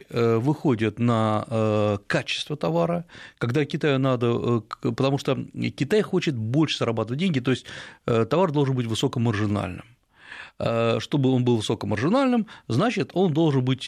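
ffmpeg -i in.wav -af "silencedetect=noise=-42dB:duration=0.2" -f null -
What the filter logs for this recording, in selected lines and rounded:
silence_start: 9.83
silence_end: 10.23 | silence_duration: 0.41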